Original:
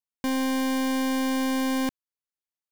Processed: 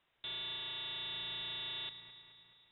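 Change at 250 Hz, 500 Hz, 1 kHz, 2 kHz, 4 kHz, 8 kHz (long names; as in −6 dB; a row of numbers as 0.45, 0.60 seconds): −38.5 dB, −26.0 dB, −22.0 dB, −14.0 dB, −1.0 dB, below −40 dB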